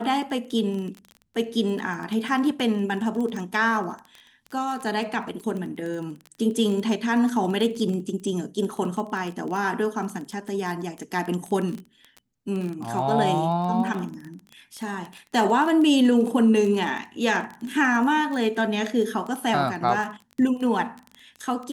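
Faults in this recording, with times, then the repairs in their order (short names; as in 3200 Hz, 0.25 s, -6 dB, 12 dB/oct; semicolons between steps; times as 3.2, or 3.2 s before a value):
crackle 21/s -29 dBFS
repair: de-click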